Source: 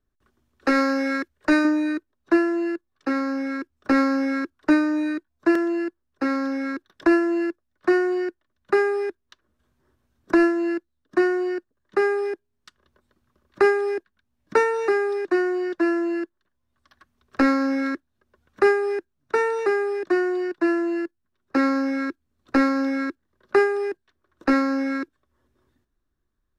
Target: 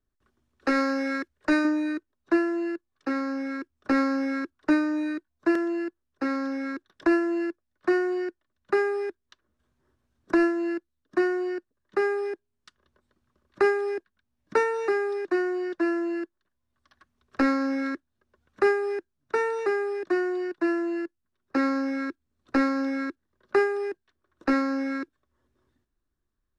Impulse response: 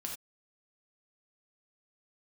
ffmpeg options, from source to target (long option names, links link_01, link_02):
-af "lowpass=11000,volume=-4dB"